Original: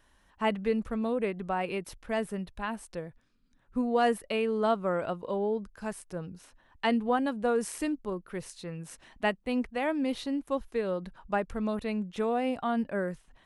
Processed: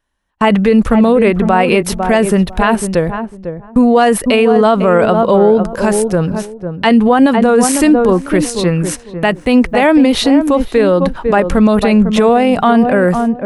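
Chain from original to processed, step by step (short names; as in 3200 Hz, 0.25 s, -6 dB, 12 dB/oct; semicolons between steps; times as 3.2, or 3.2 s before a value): gate -51 dBFS, range -32 dB; darkening echo 0.5 s, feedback 20%, low-pass 830 Hz, level -9 dB; maximiser +26 dB; gain -1 dB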